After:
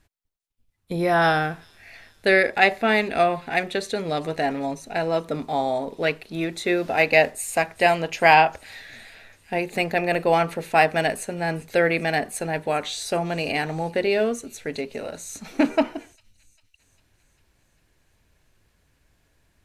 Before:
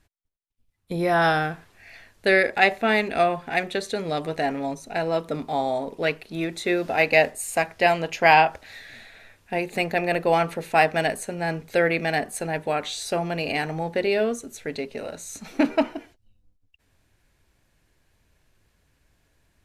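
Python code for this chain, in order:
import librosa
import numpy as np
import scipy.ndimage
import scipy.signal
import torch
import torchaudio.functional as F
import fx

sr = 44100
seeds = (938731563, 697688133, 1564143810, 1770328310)

y = fx.echo_wet_highpass(x, sr, ms=399, feedback_pct=62, hz=4900.0, wet_db=-18)
y = y * librosa.db_to_amplitude(1.0)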